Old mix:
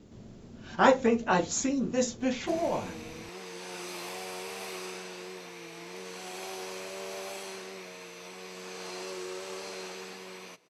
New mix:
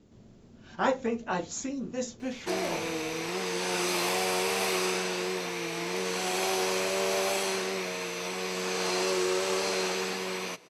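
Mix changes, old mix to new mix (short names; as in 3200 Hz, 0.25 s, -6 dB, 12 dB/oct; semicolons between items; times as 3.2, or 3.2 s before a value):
speech -5.5 dB; background +11.0 dB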